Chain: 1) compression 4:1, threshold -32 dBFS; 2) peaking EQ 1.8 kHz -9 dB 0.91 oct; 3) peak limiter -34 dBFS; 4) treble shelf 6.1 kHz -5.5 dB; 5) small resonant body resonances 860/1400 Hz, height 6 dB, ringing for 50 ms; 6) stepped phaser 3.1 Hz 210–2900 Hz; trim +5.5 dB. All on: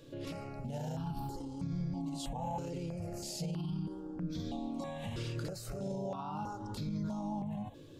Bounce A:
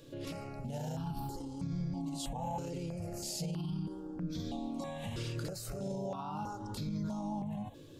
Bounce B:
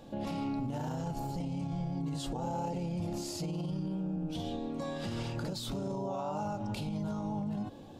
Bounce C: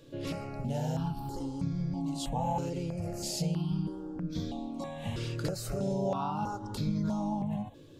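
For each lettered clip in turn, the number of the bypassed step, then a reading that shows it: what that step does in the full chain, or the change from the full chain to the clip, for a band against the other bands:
4, 8 kHz band +3.0 dB; 6, 8 kHz band -2.5 dB; 3, mean gain reduction 4.5 dB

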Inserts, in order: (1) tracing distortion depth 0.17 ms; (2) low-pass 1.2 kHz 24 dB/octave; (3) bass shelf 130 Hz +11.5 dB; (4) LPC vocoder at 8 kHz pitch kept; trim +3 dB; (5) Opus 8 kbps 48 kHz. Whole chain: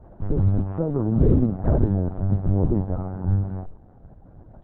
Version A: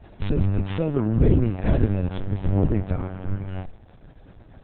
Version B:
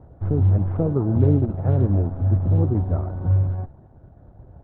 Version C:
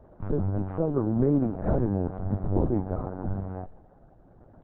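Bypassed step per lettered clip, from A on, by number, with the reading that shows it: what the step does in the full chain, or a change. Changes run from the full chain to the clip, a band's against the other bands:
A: 2, momentary loudness spread change +3 LU; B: 4, 125 Hz band +3.0 dB; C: 3, 125 Hz band -6.5 dB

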